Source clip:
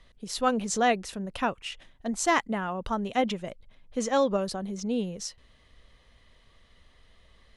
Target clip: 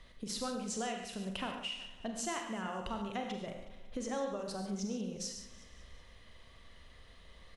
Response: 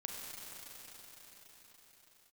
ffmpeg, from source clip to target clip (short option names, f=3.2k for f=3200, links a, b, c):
-filter_complex "[0:a]asettb=1/sr,asplit=3[a][b][c];[a]atrim=end=0.744[d];[b]atrim=start=0.74:end=3.03,asetpts=PTS-STARTPTS,afade=t=in:d=0.004:c=qsin,afade=t=out:st=2.286:d=0.004:c=qsin,equalizer=f=2.9k:t=o:w=0.23:g=8.5[e];[c]atrim=start=3.026[f];[d][e]acrossfade=d=0.004:c1=hsin:c2=qsin[g];[g][f]acrossfade=d=0.004:c1=qsin:c2=hsin,acompressor=threshold=-39dB:ratio=6,aecho=1:1:184|368|552|736:0.168|0.0823|0.0403|0.0198[h];[1:a]atrim=start_sample=2205,afade=t=out:st=0.2:d=0.01,atrim=end_sample=9261[i];[h][i]afir=irnorm=-1:irlink=0,volume=5dB"